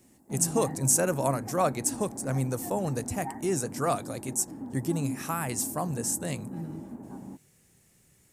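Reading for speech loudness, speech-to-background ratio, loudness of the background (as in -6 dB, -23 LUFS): -29.5 LUFS, 11.0 dB, -40.5 LUFS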